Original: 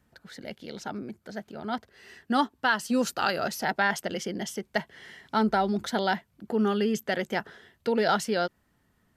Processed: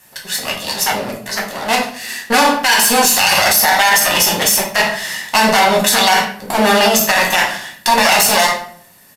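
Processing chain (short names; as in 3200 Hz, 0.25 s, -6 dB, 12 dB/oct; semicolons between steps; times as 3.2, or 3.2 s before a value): minimum comb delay 1.1 ms; low shelf 61 Hz -11 dB; downsampling 32000 Hz; RIAA curve recording; shoebox room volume 73 m³, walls mixed, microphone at 1 m; maximiser +18.5 dB; gain -1 dB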